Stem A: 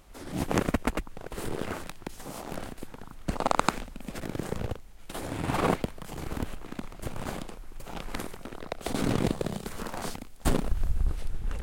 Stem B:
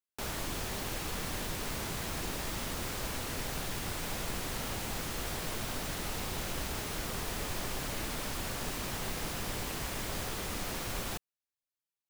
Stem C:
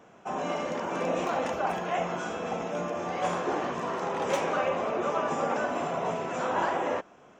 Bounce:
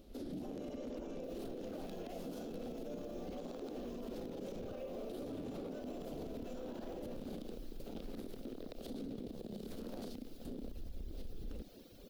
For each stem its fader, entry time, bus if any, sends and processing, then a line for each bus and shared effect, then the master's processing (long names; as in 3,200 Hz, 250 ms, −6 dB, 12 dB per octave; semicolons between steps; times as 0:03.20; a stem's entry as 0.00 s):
−4.5 dB, 0.00 s, no send, downward compressor, threshold −31 dBFS, peak gain reduction 14 dB
−18.5 dB, 1.05 s, no send, reverb reduction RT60 1.7 s
−6.0 dB, 0.15 s, no send, high-shelf EQ 4,900 Hz +11 dB; downward compressor 2.5 to 1, threshold −40 dBFS, peak gain reduction 12.5 dB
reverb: not used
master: octave-band graphic EQ 125/250/500/1,000/2,000/4,000/8,000 Hz −4/+11/+8/−12/−9/+5/−10 dB; brickwall limiter −36.5 dBFS, peak gain reduction 16.5 dB